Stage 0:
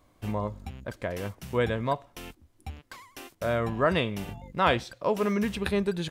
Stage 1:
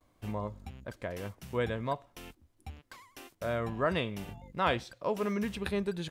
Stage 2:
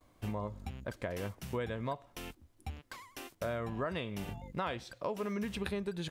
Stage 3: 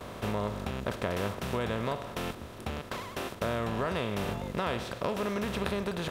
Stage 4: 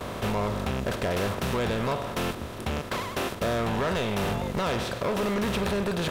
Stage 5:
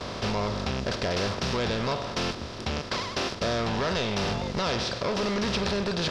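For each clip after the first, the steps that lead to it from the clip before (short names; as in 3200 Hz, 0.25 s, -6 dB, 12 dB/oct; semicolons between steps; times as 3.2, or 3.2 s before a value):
gate with hold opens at -56 dBFS; gain -5.5 dB
compressor 6:1, threshold -36 dBFS, peak gain reduction 12.5 dB; gain +3 dB
per-bin compression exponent 0.4
overloaded stage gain 30.5 dB; gain +7.5 dB
synth low-pass 5100 Hz, resonance Q 3.9; gain -1 dB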